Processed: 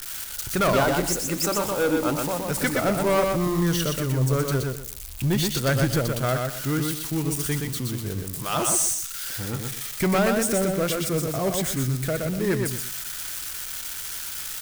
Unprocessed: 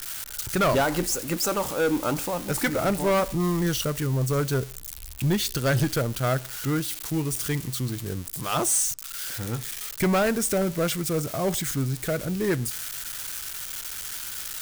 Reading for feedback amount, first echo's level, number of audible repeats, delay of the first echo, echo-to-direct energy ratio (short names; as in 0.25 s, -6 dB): 25%, -4.0 dB, 3, 0.122 s, -3.5 dB